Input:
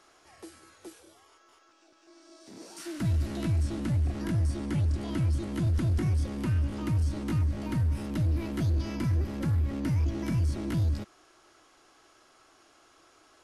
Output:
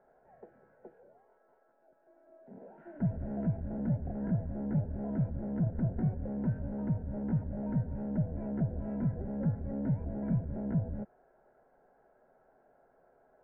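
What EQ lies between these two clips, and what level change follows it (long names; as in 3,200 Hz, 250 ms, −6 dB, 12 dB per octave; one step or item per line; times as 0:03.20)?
elliptic low-pass filter 1,500 Hz, stop band 70 dB
phaser with its sweep stopped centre 320 Hz, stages 6
+2.5 dB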